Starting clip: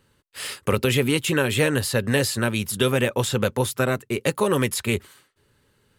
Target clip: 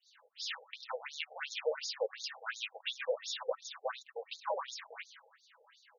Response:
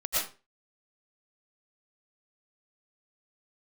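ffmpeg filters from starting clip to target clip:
-filter_complex "[0:a]highshelf=frequency=6800:gain=10.5,aecho=1:1:6.1:0.56,acompressor=threshold=-41dB:ratio=2.5,aeval=exprs='clip(val(0),-1,0.015)':channel_layout=same,acrossover=split=4700[link_01][link_02];[link_01]adelay=60[link_03];[link_03][link_02]amix=inputs=2:normalize=0,asplit=2[link_04][link_05];[1:a]atrim=start_sample=2205,atrim=end_sample=4410,lowpass=2400[link_06];[link_05][link_06]afir=irnorm=-1:irlink=0,volume=-16.5dB[link_07];[link_04][link_07]amix=inputs=2:normalize=0,afftfilt=real='re*between(b*sr/1024,580*pow(5000/580,0.5+0.5*sin(2*PI*2.8*pts/sr))/1.41,580*pow(5000/580,0.5+0.5*sin(2*PI*2.8*pts/sr))*1.41)':imag='im*between(b*sr/1024,580*pow(5000/580,0.5+0.5*sin(2*PI*2.8*pts/sr))/1.41,580*pow(5000/580,0.5+0.5*sin(2*PI*2.8*pts/sr))*1.41)':win_size=1024:overlap=0.75,volume=8.5dB"

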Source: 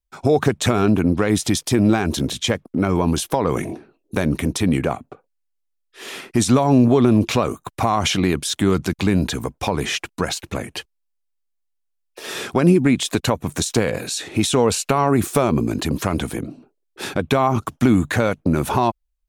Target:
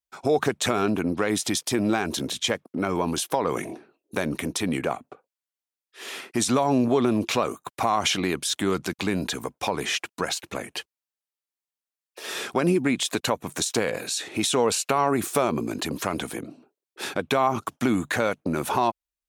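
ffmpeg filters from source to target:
ffmpeg -i in.wav -af "highpass=frequency=390:poles=1,volume=-2.5dB" out.wav

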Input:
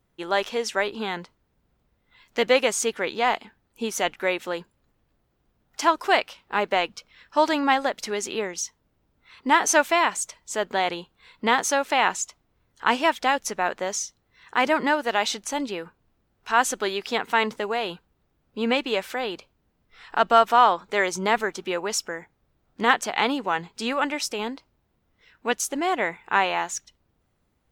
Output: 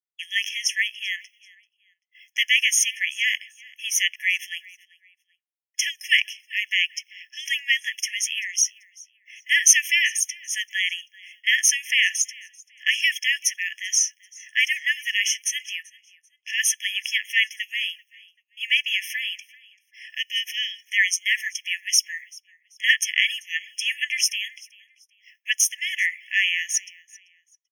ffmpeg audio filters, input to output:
ffmpeg -i in.wav -filter_complex "[0:a]highpass=1100,agate=range=-33dB:threshold=-54dB:ratio=3:detection=peak,highshelf=frequency=2700:gain=6.5,asettb=1/sr,asplit=3[link_01][link_02][link_03];[link_01]atrim=end=15.824[link_04];[link_02]atrim=start=15.82:end=16.54,asetpts=PTS-STARTPTS,afade=type=in:duration=0.004:curve=qsin,afade=type=out:start_time=0.716:duration=0.004:curve=qsin,adynamicsmooth=sensitivity=5.5:basefreq=5200[link_05];[link_03]atrim=start=16.536[link_06];[link_04][link_05]acrossfade=duration=0.004:curve1=hsin:curve2=qsin[link_07];[link_07][link_06]acrossfade=duration=0.004:curve1=qsin:curve2=hsin,asplit=2[link_08][link_09];[link_09]aecho=0:1:388|776:0.0631|0.0183[link_10];[link_08][link_10]amix=inputs=2:normalize=0,afftfilt=real='re*eq(mod(floor(b*sr/1024/1700),2),1)':imag='im*eq(mod(floor(b*sr/1024/1700),2),1)':win_size=1024:overlap=0.75,volume=5dB" out.wav

